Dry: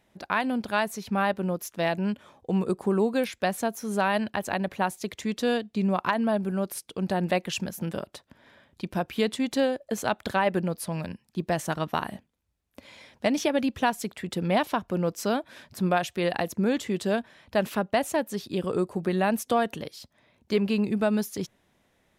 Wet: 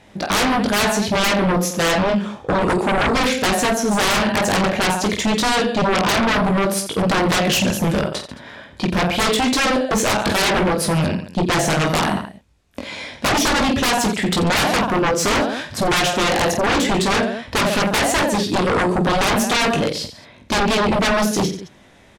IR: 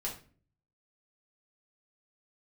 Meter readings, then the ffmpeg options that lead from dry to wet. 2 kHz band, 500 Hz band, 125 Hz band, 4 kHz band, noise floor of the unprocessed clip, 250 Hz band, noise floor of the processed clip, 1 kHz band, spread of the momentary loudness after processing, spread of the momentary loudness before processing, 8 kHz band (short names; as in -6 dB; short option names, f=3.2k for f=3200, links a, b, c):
+12.5 dB, +7.5 dB, +9.5 dB, +16.5 dB, -70 dBFS, +8.0 dB, -48 dBFS, +10.0 dB, 6 LU, 8 LU, +16.0 dB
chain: -af "lowpass=8.4k,aecho=1:1:20|48|87.2|142.1|218.9:0.631|0.398|0.251|0.158|0.1,aeval=exprs='0.376*sin(PI/2*7.94*val(0)/0.376)':c=same,volume=-5.5dB"